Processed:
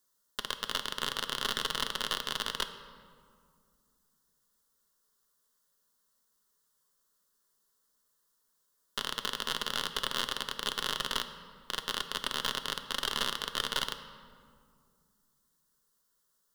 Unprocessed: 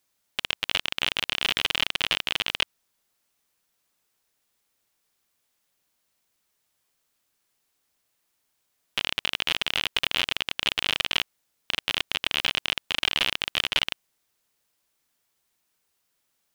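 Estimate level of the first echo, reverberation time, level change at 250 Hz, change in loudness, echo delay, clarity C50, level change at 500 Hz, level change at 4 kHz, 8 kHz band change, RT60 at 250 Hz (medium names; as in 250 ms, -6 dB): no echo, 2.1 s, -3.5 dB, -7.5 dB, no echo, 10.5 dB, -2.5 dB, -7.5 dB, -0.5 dB, 3.0 s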